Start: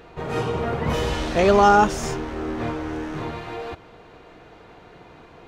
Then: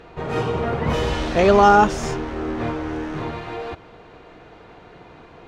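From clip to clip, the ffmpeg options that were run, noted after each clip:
ffmpeg -i in.wav -af "highshelf=frequency=9200:gain=-11,volume=2dB" out.wav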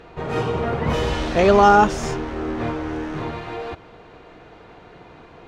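ffmpeg -i in.wav -af anull out.wav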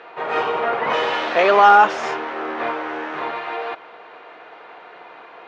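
ffmpeg -i in.wav -af "apsyclip=11dB,highpass=680,lowpass=2900,volume=-3dB" out.wav

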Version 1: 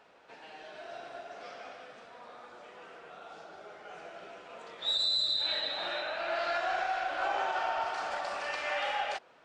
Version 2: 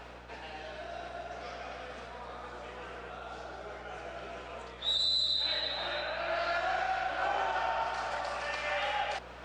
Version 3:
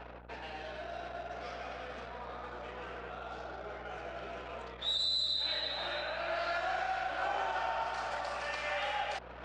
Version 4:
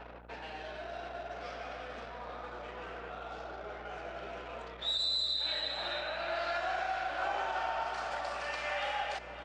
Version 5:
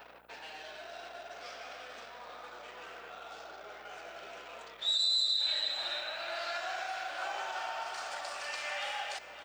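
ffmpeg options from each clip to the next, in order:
ffmpeg -i in.wav -af "areverse,acompressor=mode=upward:threshold=-36dB:ratio=2.5,areverse,aeval=exprs='val(0)+0.00224*(sin(2*PI*60*n/s)+sin(2*PI*2*60*n/s)/2+sin(2*PI*3*60*n/s)/3+sin(2*PI*4*60*n/s)/4+sin(2*PI*5*60*n/s)/5)':channel_layout=same" out.wav
ffmpeg -i in.wav -filter_complex "[0:a]anlmdn=0.0158,asplit=2[link_01][link_02];[link_02]acompressor=threshold=-41dB:ratio=6,volume=-1dB[link_03];[link_01][link_03]amix=inputs=2:normalize=0,volume=-4.5dB" out.wav
ffmpeg -i in.wav -af "equalizer=frequency=98:width_type=o:width=0.32:gain=-12,aecho=1:1:564:0.2" out.wav
ffmpeg -i in.wav -af "aemphasis=mode=production:type=riaa,volume=-3.5dB" out.wav

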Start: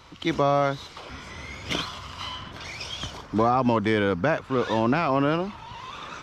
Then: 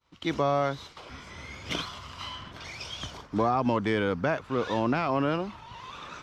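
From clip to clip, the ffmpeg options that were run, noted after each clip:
ffmpeg -i in.wav -af "agate=range=-33dB:threshold=-39dB:ratio=3:detection=peak,volume=-4dB" out.wav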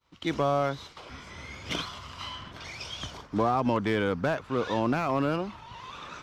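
ffmpeg -i in.wav -af "aeval=exprs='clip(val(0),-1,0.0794)':channel_layout=same" out.wav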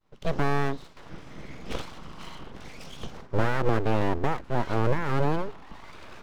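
ffmpeg -i in.wav -af "tiltshelf=frequency=820:gain=8,aeval=exprs='abs(val(0))':channel_layout=same" out.wav

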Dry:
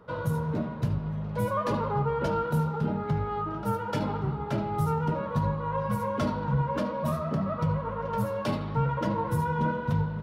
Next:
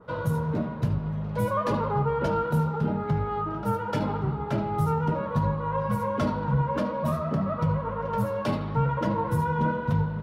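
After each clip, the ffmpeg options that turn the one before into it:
ffmpeg -i in.wav -af "adynamicequalizer=threshold=0.00355:dfrequency=2700:dqfactor=0.7:tfrequency=2700:tqfactor=0.7:attack=5:release=100:ratio=0.375:range=1.5:mode=cutabove:tftype=highshelf,volume=2dB" out.wav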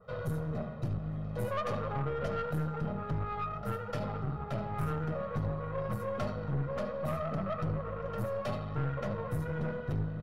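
ffmpeg -i in.wav -af "aecho=1:1:1.6:0.91,aeval=exprs='(tanh(11.2*val(0)+0.5)-tanh(0.5))/11.2':channel_layout=same,volume=-7dB" out.wav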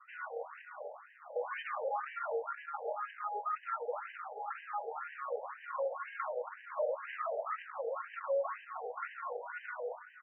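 ffmpeg -i in.wav -af "asoftclip=type=tanh:threshold=-33dB,afftfilt=real='re*between(b*sr/1024,590*pow(2200/590,0.5+0.5*sin(2*PI*2*pts/sr))/1.41,590*pow(2200/590,0.5+0.5*sin(2*PI*2*pts/sr))*1.41)':imag='im*between(b*sr/1024,590*pow(2200/590,0.5+0.5*sin(2*PI*2*pts/sr))/1.41,590*pow(2200/590,0.5+0.5*sin(2*PI*2*pts/sr))*1.41)':win_size=1024:overlap=0.75,volume=8dB" out.wav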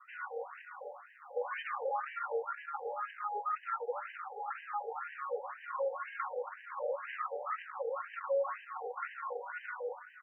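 ffmpeg -i in.wav -af "asuperstop=centerf=650:order=20:qfactor=5.5,volume=1dB" out.wav

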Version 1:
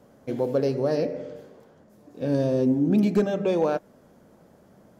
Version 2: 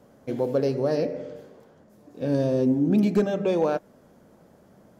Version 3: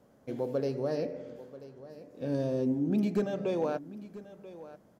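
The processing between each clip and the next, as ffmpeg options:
ffmpeg -i in.wav -af anull out.wav
ffmpeg -i in.wav -af "aecho=1:1:986:0.15,volume=-7.5dB" out.wav

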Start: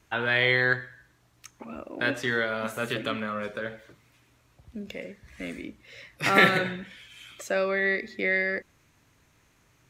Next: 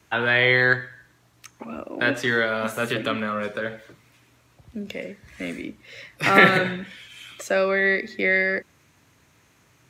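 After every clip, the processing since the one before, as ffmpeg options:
ffmpeg -i in.wav -filter_complex "[0:a]highpass=78,acrossover=split=210|3400[link_01][link_02][link_03];[link_03]alimiter=level_in=8dB:limit=-24dB:level=0:latency=1:release=129,volume=-8dB[link_04];[link_01][link_02][link_04]amix=inputs=3:normalize=0,volume=5dB" out.wav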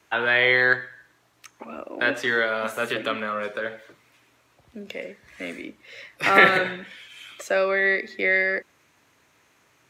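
ffmpeg -i in.wav -af "bass=frequency=250:gain=-11,treble=frequency=4000:gain=-3" out.wav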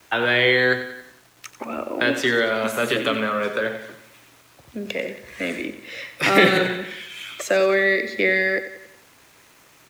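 ffmpeg -i in.wav -filter_complex "[0:a]acrossover=split=480|3000[link_01][link_02][link_03];[link_02]acompressor=threshold=-32dB:ratio=3[link_04];[link_01][link_04][link_03]amix=inputs=3:normalize=0,acrusher=bits=9:mix=0:aa=0.000001,asplit=2[link_05][link_06];[link_06]aecho=0:1:91|182|273|364|455:0.251|0.126|0.0628|0.0314|0.0157[link_07];[link_05][link_07]amix=inputs=2:normalize=0,volume=7.5dB" out.wav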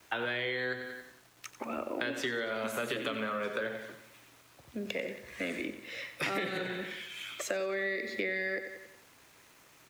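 ffmpeg -i in.wav -af "acompressor=threshold=-23dB:ratio=16,volume=-7dB" out.wav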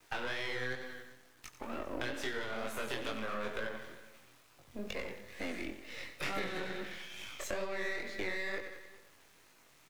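ffmpeg -i in.wav -af "aeval=exprs='if(lt(val(0),0),0.251*val(0),val(0))':channel_layout=same,flanger=delay=19:depth=5.5:speed=2.2,aecho=1:1:400:0.0891,volume=2dB" out.wav

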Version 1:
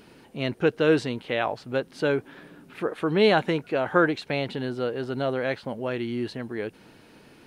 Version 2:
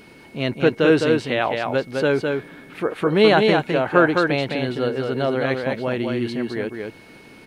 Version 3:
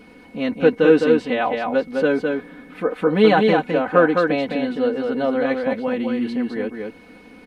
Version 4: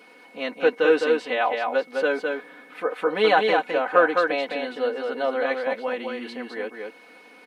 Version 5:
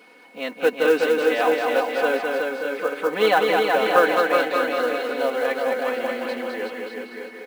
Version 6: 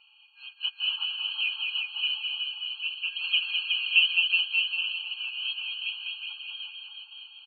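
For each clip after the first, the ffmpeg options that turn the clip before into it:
ffmpeg -i in.wav -filter_complex "[0:a]aeval=exprs='val(0)+0.00178*sin(2*PI*2200*n/s)':channel_layout=same,asplit=2[link_01][link_02];[link_02]aecho=0:1:209:0.631[link_03];[link_01][link_03]amix=inputs=2:normalize=0,volume=4.5dB" out.wav
ffmpeg -i in.wav -af "highshelf=frequency=2400:gain=-9,aecho=1:1:4:0.88,volume=-1dB" out.wav
ffmpeg -i in.wav -af "highpass=540" out.wav
ffmpeg -i in.wav -filter_complex "[0:a]acrusher=bits=6:mode=log:mix=0:aa=0.000001,asplit=2[link_01][link_02];[link_02]aecho=0:1:370|610.5|766.8|868.4|934.5:0.631|0.398|0.251|0.158|0.1[link_03];[link_01][link_03]amix=inputs=2:normalize=0" out.wav
ffmpeg -i in.wav -af "afftfilt=real='real(if(lt(b,272),68*(eq(floor(b/68),0)*3+eq(floor(b/68),1)*0+eq(floor(b/68),2)*1+eq(floor(b/68),3)*2)+mod(b,68),b),0)':imag='imag(if(lt(b,272),68*(eq(floor(b/68),0)*3+eq(floor(b/68),1)*0+eq(floor(b/68),2)*1+eq(floor(b/68),3)*2)+mod(b,68),b),0)':win_size=2048:overlap=0.75,aresample=8000,aresample=44100,afftfilt=real='re*eq(mod(floor(b*sr/1024/810),2),1)':imag='im*eq(mod(floor(b*sr/1024/810),2),1)':win_size=1024:overlap=0.75" out.wav

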